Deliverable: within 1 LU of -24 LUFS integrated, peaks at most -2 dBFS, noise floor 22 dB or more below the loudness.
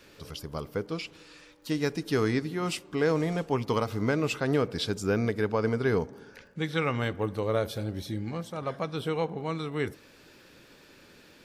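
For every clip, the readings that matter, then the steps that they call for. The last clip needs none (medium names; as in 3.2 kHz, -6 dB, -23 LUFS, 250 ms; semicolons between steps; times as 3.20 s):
tick rate 19 per s; loudness -30.0 LUFS; peak level -13.5 dBFS; loudness target -24.0 LUFS
-> de-click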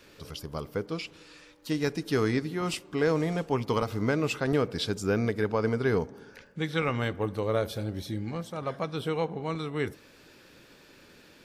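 tick rate 0 per s; loudness -30.0 LUFS; peak level -13.5 dBFS; loudness target -24.0 LUFS
-> trim +6 dB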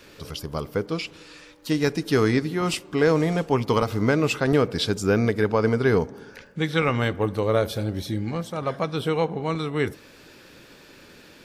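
loudness -24.0 LUFS; peak level -7.5 dBFS; noise floor -50 dBFS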